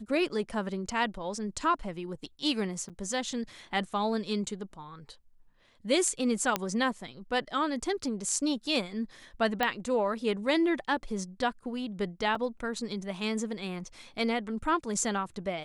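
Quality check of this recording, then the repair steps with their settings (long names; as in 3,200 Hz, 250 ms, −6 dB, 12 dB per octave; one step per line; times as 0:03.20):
0:02.89–0:02.90: drop-out 7.6 ms
0:06.56: click −11 dBFS
0:09.63: click −14 dBFS
0:12.35: drop-out 3.4 ms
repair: click removal
repair the gap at 0:02.89, 7.6 ms
repair the gap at 0:12.35, 3.4 ms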